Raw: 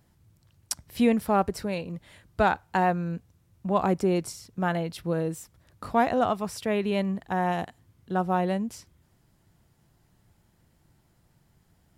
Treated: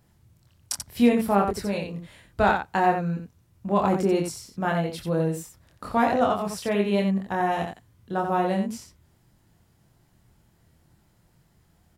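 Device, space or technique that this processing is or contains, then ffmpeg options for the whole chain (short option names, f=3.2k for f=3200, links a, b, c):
slapback doubling: -filter_complex "[0:a]asplit=3[a][b][c];[b]adelay=25,volume=-3dB[d];[c]adelay=88,volume=-6dB[e];[a][d][e]amix=inputs=3:normalize=0"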